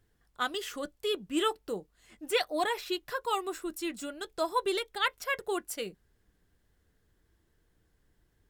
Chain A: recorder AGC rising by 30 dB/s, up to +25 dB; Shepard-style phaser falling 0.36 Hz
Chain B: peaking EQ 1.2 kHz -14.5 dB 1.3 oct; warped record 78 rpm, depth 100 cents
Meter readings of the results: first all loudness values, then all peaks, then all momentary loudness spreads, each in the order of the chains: -33.5 LUFS, -37.0 LUFS; -18.0 dBFS, -18.0 dBFS; 18 LU, 9 LU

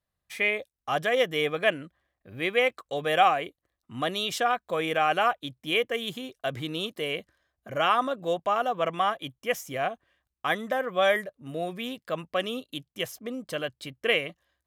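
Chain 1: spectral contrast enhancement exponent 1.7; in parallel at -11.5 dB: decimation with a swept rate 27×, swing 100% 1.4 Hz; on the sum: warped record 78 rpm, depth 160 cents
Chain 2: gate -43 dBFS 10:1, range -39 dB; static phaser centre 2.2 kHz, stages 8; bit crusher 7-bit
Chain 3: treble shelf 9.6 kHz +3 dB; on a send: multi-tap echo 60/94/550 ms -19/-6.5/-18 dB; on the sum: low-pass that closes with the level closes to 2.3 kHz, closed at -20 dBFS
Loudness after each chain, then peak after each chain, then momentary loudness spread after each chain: -27.5 LUFS, -31.5 LUFS, -27.5 LUFS; -10.0 dBFS, -11.5 dBFS, -9.0 dBFS; 11 LU, 13 LU, 11 LU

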